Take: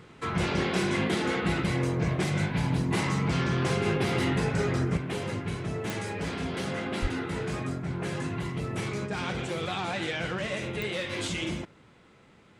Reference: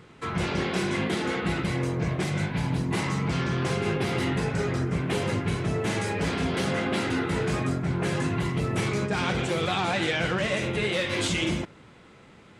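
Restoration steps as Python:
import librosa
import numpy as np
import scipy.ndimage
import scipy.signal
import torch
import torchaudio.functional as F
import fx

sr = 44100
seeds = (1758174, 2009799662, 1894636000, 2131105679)

y = fx.fix_declick_ar(x, sr, threshold=10.0)
y = fx.fix_deplosive(y, sr, at_s=(7.01,))
y = fx.fix_level(y, sr, at_s=4.97, step_db=5.5)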